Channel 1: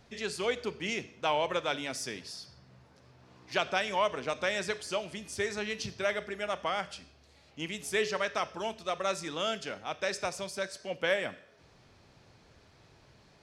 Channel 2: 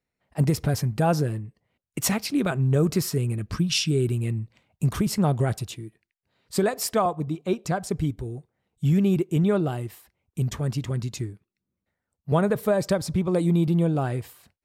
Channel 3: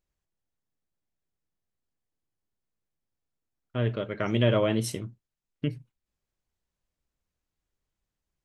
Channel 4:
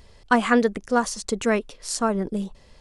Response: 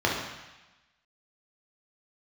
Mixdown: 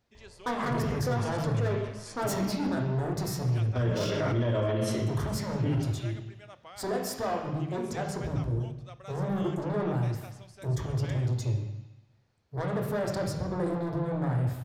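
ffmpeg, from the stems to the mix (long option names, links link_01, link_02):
-filter_complex "[0:a]volume=-16.5dB[link_01];[1:a]lowshelf=frequency=190:gain=8.5,asoftclip=type=tanh:threshold=-25.5dB,adelay=250,volume=-9dB,asplit=2[link_02][link_03];[link_03]volume=-8.5dB[link_04];[2:a]asoftclip=type=tanh:threshold=-14dB,volume=-7dB,asplit=3[link_05][link_06][link_07];[link_06]volume=-5dB[link_08];[3:a]equalizer=frequency=7700:width_type=o:width=2.5:gain=-13.5,flanger=delay=1:depth=2.3:regen=-66:speed=0.85:shape=sinusoidal,asoftclip=type=hard:threshold=-29dB,adelay=150,volume=-4dB,asplit=2[link_09][link_10];[link_10]volume=-10dB[link_11];[link_07]apad=whole_len=656801[link_12];[link_02][link_12]sidechaincompress=threshold=-41dB:ratio=8:attack=16:release=299[link_13];[4:a]atrim=start_sample=2205[link_14];[link_04][link_08][link_11]amix=inputs=3:normalize=0[link_15];[link_15][link_14]afir=irnorm=-1:irlink=0[link_16];[link_01][link_13][link_05][link_09][link_16]amix=inputs=5:normalize=0,alimiter=limit=-20.5dB:level=0:latency=1:release=13"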